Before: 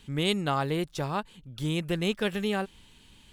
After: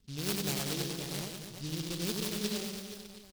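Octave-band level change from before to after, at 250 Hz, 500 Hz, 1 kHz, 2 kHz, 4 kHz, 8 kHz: -6.5 dB, -9.0 dB, -14.0 dB, -8.5 dB, -3.0 dB, +8.0 dB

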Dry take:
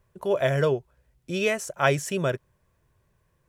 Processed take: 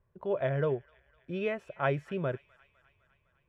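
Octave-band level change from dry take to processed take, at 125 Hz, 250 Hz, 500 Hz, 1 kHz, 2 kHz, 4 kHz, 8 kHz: -6.0 dB, -6.0 dB, -7.0 dB, -7.5 dB, -10.0 dB, -15.5 dB, under -30 dB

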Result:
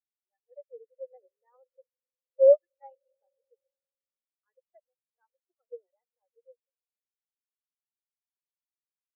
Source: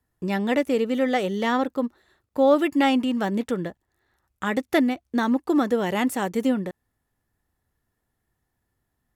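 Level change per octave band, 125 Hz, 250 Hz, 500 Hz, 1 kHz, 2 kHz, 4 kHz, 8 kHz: under -40 dB, under -40 dB, -3.5 dB, under -30 dB, under -40 dB, under -40 dB, under -35 dB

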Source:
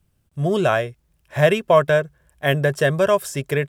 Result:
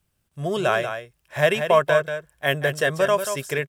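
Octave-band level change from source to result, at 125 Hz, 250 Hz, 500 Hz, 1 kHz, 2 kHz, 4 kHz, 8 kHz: -8.0 dB, -6.5 dB, -3.0 dB, -1.0 dB, 0.0 dB, +0.5 dB, +0.5 dB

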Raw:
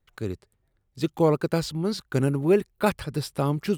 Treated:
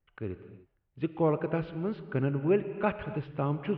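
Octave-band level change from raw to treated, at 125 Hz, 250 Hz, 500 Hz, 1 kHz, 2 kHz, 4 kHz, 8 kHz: -5.5 dB, -5.5 dB, -5.5 dB, -5.0 dB, -5.0 dB, under -15 dB, under -40 dB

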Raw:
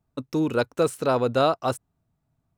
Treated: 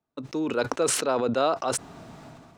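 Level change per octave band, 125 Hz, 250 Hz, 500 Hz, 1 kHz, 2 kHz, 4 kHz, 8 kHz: -8.0 dB, -3.0 dB, -2.5 dB, -2.0 dB, -0.5 dB, +1.5 dB, +12.0 dB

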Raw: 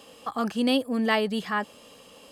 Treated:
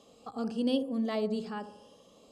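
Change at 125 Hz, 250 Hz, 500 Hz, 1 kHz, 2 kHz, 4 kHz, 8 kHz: no reading, -5.0 dB, -5.0 dB, -12.0 dB, -17.5 dB, -11.0 dB, under -10 dB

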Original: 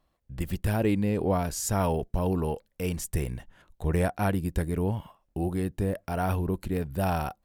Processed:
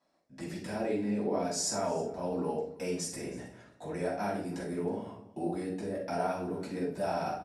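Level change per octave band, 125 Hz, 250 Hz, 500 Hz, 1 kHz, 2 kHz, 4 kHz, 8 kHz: -14.0 dB, -5.5 dB, -2.5 dB, -3.5 dB, -5.5 dB, +1.0 dB, -1.0 dB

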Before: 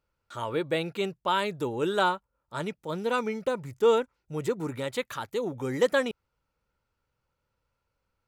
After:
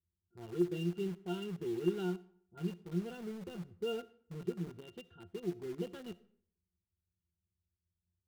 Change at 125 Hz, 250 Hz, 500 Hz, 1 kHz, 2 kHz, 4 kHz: -3.5 dB, -4.0 dB, -12.5 dB, -23.0 dB, -19.5 dB, -15.5 dB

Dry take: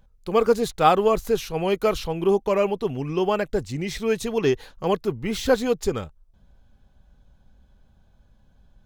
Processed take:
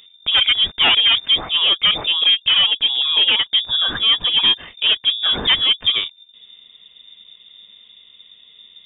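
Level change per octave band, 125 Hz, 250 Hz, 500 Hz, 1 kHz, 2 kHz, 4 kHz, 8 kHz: -9.5 dB, -12.0 dB, -16.5 dB, -5.0 dB, +12.0 dB, +26.0 dB, under -40 dB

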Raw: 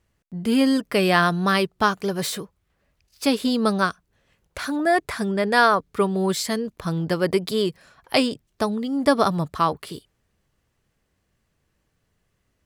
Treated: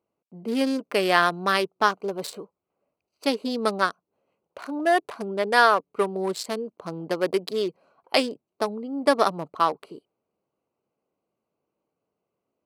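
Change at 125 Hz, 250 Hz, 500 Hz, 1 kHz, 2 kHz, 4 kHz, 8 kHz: -12.0 dB, -7.0 dB, -1.5 dB, -1.0 dB, -1.5 dB, -2.5 dB, -6.0 dB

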